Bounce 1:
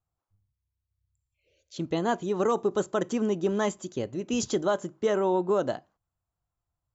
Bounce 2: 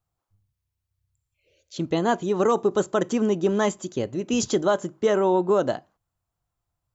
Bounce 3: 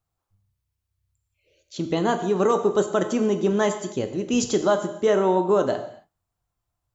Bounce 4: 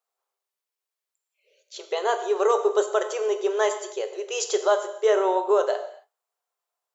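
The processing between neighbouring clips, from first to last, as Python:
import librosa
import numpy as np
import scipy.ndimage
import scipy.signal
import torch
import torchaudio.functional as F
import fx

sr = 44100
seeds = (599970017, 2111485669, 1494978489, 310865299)

y1 = fx.peak_eq(x, sr, hz=64.0, db=-5.0, octaves=0.34)
y1 = y1 * librosa.db_to_amplitude(4.5)
y2 = fx.rev_gated(y1, sr, seeds[0], gate_ms=300, shape='falling', drr_db=7.0)
y3 = fx.brickwall_highpass(y2, sr, low_hz=370.0)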